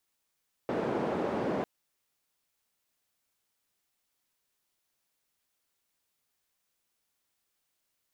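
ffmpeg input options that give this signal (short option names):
-f lavfi -i "anoisesrc=c=white:d=0.95:r=44100:seed=1,highpass=f=200,lowpass=f=520,volume=-8.9dB"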